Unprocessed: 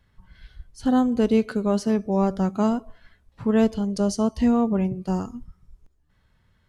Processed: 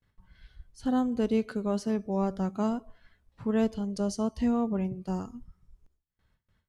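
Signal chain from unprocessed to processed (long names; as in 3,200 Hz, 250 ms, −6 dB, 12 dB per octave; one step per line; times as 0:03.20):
noise gate with hold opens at −53 dBFS
level −7 dB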